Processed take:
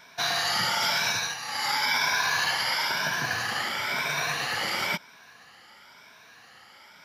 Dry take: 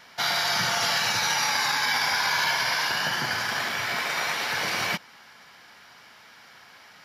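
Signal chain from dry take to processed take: moving spectral ripple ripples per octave 1.6, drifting +0.99 Hz, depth 10 dB; 1.08–1.73 dip -10 dB, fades 0.29 s; 3.97–4.47 bell 140 Hz +14 dB 0.29 oct; gain -2.5 dB

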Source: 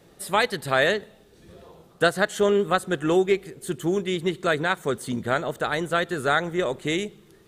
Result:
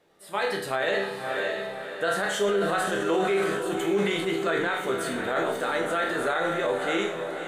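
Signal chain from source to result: transient shaper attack -3 dB, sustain +6 dB; tone controls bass -12 dB, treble -7 dB; resonator bank C2 major, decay 0.51 s; AGC gain up to 7 dB; diffused feedback echo 0.582 s, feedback 44%, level -8 dB; limiter -24.5 dBFS, peak gain reduction 11 dB; 2.18–4.65 sustainer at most 28 dB/s; gain +8 dB

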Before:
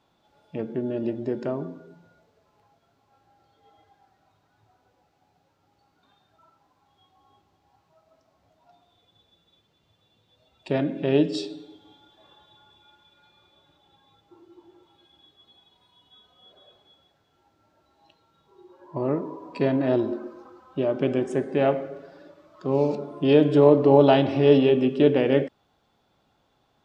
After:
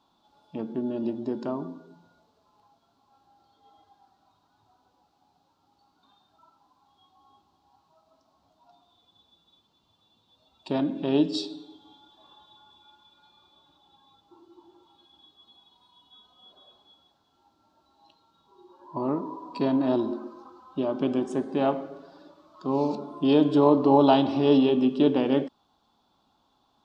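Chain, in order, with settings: graphic EQ 125/250/500/1000/2000/4000 Hz -6/+6/-6/+10/-11/+8 dB; gain -3 dB

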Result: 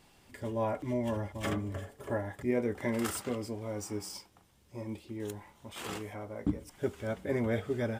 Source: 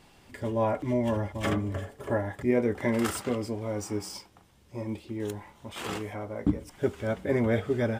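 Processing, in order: high shelf 6100 Hz +5.5 dB; gain -5.5 dB

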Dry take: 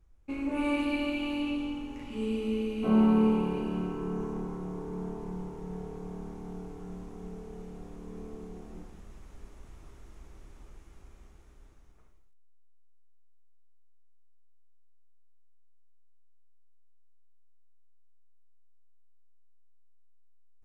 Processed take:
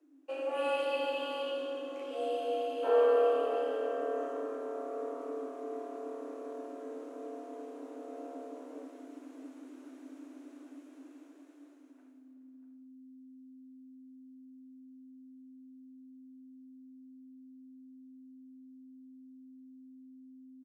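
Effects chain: outdoor echo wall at 110 m, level -11 dB; frequency shift +260 Hz; gain -3 dB

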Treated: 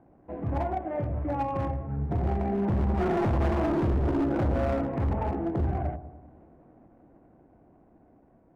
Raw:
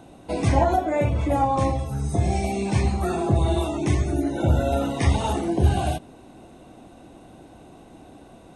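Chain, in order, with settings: median filter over 25 samples; Doppler pass-by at 3.67, 5 m/s, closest 3.3 m; inverse Chebyshev low-pass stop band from 6300 Hz, stop band 60 dB; in parallel at -0.5 dB: limiter -18 dBFS, peak gain reduction 7.5 dB; on the sum: hard clip -21.5 dBFS, distortion -7 dB; on a send: dark delay 0.1 s, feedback 57%, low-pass 920 Hz, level -12.5 dB; on the sum: gain -1.5 dB

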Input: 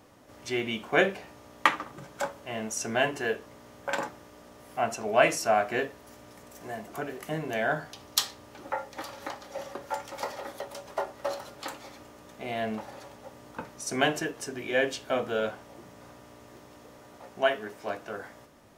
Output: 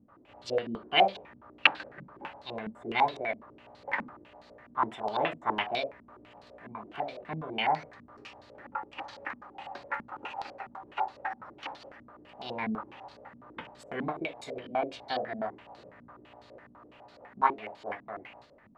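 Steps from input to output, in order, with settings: formant shift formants +5 st; stepped low-pass 12 Hz 230–4300 Hz; gain -6 dB

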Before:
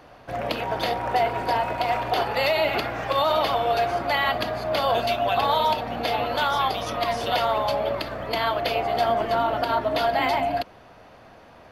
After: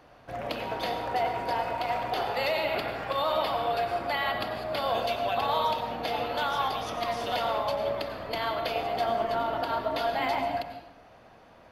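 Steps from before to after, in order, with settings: 2.57–4.89 notch 6200 Hz, Q 5.1; reverb RT60 0.85 s, pre-delay 85 ms, DRR 6 dB; gain -6.5 dB

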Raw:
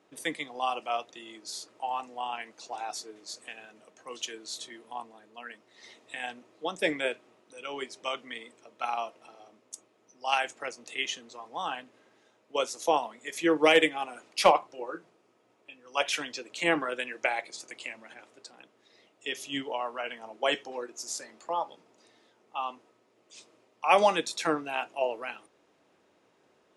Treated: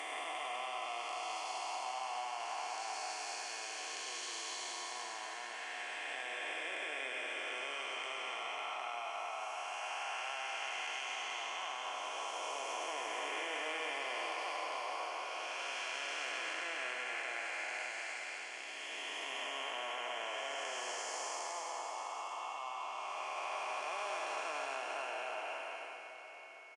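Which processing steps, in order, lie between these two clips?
time blur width 1.04 s; HPF 840 Hz 12 dB/oct; notch 3700 Hz, Q 6; comb 2.9 ms, depth 31%; compressor 5:1, threshold -48 dBFS, peak gain reduction 13 dB; whine 2200 Hz -67 dBFS; on a send: tapped delay 93/101/103/855/886 ms -17.5/-6/-19.5/-18/-12 dB; on the sum: downsampling 22050 Hz; gain +9 dB; Opus 64 kbps 48000 Hz

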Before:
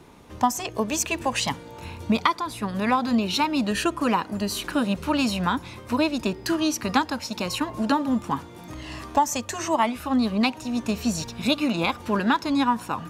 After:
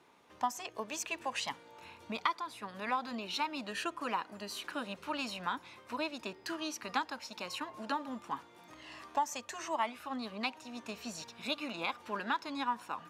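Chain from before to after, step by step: HPF 940 Hz 6 dB/oct; high shelf 5100 Hz -9.5 dB; gain -7.5 dB

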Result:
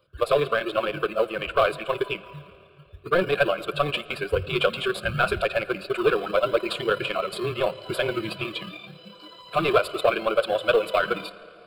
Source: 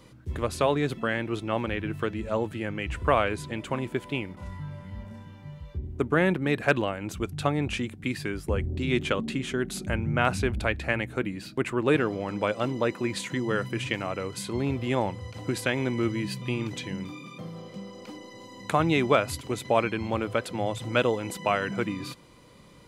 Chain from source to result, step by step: spectral noise reduction 18 dB; in parallel at -7.5 dB: decimation with a swept rate 24×, swing 60% 0.43 Hz; on the sum: overdrive pedal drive 20 dB, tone 2500 Hz, clips at -5 dBFS; on a send at -17 dB: reverb RT60 5.2 s, pre-delay 84 ms; on the sum: granular stretch 0.51×, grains 56 ms; fixed phaser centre 1300 Hz, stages 8

